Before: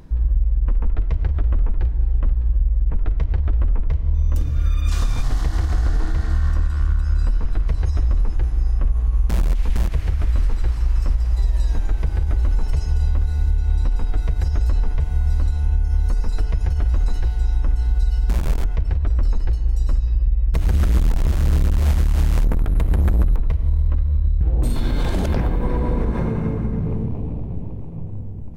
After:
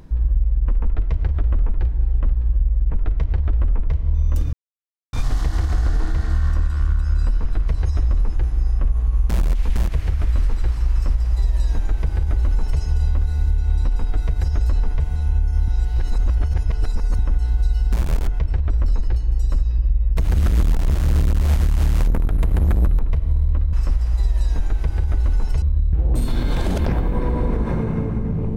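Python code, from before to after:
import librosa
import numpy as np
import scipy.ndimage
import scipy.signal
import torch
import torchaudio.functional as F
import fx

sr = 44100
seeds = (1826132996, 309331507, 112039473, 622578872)

y = fx.edit(x, sr, fx.silence(start_s=4.53, length_s=0.6),
    fx.duplicate(start_s=10.92, length_s=1.89, to_s=24.1),
    fx.cut(start_s=15.16, length_s=0.37),
    fx.reverse_span(start_s=16.05, length_s=1.51), tone=tone)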